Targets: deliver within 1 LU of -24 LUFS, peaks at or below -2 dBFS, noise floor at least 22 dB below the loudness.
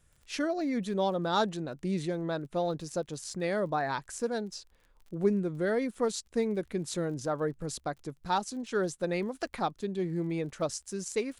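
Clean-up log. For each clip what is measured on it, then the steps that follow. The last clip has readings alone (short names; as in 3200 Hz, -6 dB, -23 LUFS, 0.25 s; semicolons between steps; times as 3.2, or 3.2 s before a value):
ticks 32/s; loudness -32.5 LUFS; peak -14.5 dBFS; loudness target -24.0 LUFS
-> de-click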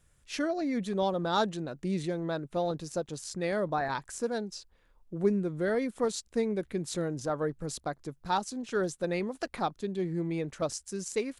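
ticks 0/s; loudness -32.5 LUFS; peak -14.5 dBFS; loudness target -24.0 LUFS
-> gain +8.5 dB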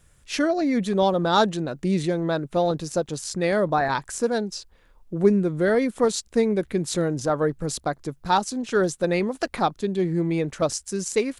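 loudness -24.0 LUFS; peak -6.0 dBFS; noise floor -58 dBFS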